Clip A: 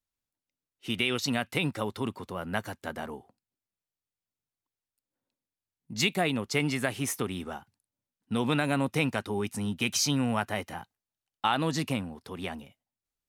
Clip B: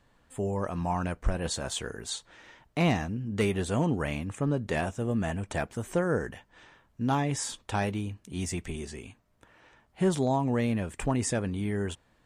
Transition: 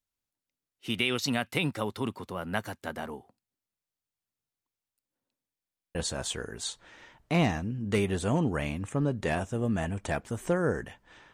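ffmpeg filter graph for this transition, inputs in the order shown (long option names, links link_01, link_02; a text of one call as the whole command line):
ffmpeg -i cue0.wav -i cue1.wav -filter_complex "[0:a]apad=whole_dur=11.33,atrim=end=11.33,asplit=7[link_01][link_02][link_03][link_04][link_05][link_06][link_07];[link_01]atrim=end=5.592[link_08];[link_02]atrim=start=5.528:end=5.592[link_09];[link_03]atrim=start=5.528:end=5.592[link_10];[link_04]atrim=start=5.528:end=5.592[link_11];[link_05]atrim=start=5.528:end=5.592[link_12];[link_06]atrim=start=5.528:end=5.592[link_13];[link_07]atrim=start=5.528:end=5.592[link_14];[1:a]atrim=start=1.408:end=6.79[link_15];[link_08][link_09]acrossfade=duration=0.004:curve1=hsin:curve2=hsin[link_16];[link_16][link_10]acrossfade=duration=0.004:curve1=hsin:curve2=hsin[link_17];[link_17][link_11]acrossfade=duration=0.004:curve1=hsin:curve2=hsin[link_18];[link_18][link_12]acrossfade=duration=0.004:curve1=hsin:curve2=hsin[link_19];[link_19][link_13]acrossfade=duration=0.004:curve1=hsin:curve2=hsin[link_20];[link_20][link_14]acrossfade=duration=0.004:curve1=hsin:curve2=hsin[link_21];[link_21][link_15]acrossfade=duration=0.004:curve1=hsin:curve2=hsin" out.wav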